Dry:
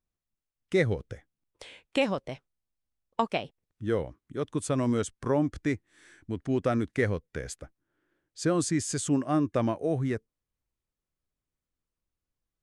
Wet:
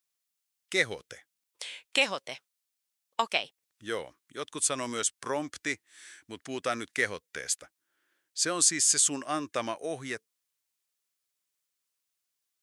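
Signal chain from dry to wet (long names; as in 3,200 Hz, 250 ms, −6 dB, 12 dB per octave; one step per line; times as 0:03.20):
high-pass filter 1,300 Hz 6 dB per octave
high-shelf EQ 2,500 Hz +9.5 dB
level +3 dB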